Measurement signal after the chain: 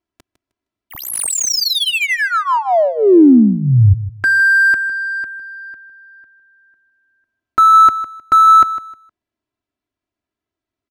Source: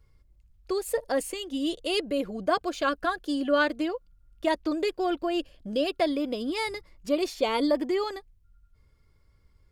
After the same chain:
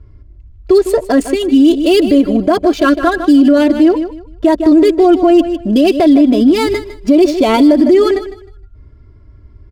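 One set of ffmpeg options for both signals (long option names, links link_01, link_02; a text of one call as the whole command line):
ffmpeg -i in.wav -filter_complex "[0:a]equalizer=frequency=150:width=0.4:gain=14.5,aecho=1:1:3:0.87,adynamicsmooth=sensitivity=8:basefreq=3200,crystalizer=i=0.5:c=0,asplit=2[link_01][link_02];[link_02]aecho=0:1:155|310|465:0.2|0.0459|0.0106[link_03];[link_01][link_03]amix=inputs=2:normalize=0,alimiter=level_in=12dB:limit=-1dB:release=50:level=0:latency=1,volume=-1dB" out.wav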